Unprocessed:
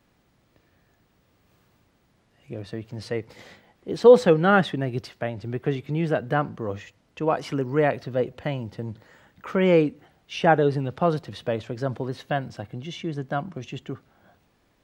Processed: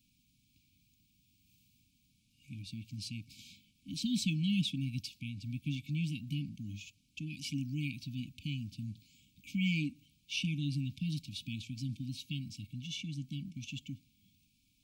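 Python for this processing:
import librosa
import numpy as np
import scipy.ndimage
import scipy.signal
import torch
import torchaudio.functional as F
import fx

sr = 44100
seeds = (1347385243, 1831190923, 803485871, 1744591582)

y = fx.brickwall_bandstop(x, sr, low_hz=300.0, high_hz=2200.0)
y = fx.high_shelf(y, sr, hz=3000.0, db=9.5)
y = y * librosa.db_to_amplitude(-7.5)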